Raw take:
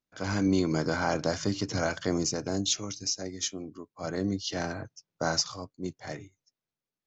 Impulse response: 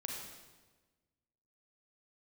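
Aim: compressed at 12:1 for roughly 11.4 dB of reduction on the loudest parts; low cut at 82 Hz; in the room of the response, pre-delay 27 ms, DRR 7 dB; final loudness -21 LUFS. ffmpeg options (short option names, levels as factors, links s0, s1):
-filter_complex "[0:a]highpass=82,acompressor=threshold=0.0251:ratio=12,asplit=2[s0][s1];[1:a]atrim=start_sample=2205,adelay=27[s2];[s1][s2]afir=irnorm=-1:irlink=0,volume=0.447[s3];[s0][s3]amix=inputs=2:normalize=0,volume=6.31"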